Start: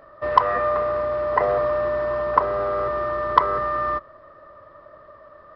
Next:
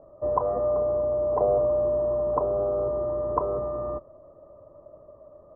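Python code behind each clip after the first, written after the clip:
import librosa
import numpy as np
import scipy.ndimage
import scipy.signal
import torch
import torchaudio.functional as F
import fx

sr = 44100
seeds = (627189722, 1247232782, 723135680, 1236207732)

y = scipy.signal.sosfilt(scipy.signal.cheby2(4, 60, 2600.0, 'lowpass', fs=sr, output='sos'), x)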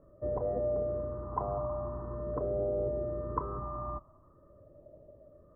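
y = fx.phaser_stages(x, sr, stages=4, low_hz=480.0, high_hz=1100.0, hz=0.45, feedback_pct=25)
y = F.gain(torch.from_numpy(y), -1.0).numpy()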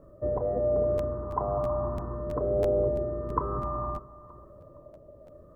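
y = x * (1.0 - 0.32 / 2.0 + 0.32 / 2.0 * np.cos(2.0 * np.pi * 1.1 * (np.arange(len(x)) / sr)))
y = fx.echo_feedback(y, sr, ms=463, feedback_pct=33, wet_db=-19.0)
y = fx.buffer_crackle(y, sr, first_s=0.97, period_s=0.33, block=512, kind='repeat')
y = F.gain(torch.from_numpy(y), 7.0).numpy()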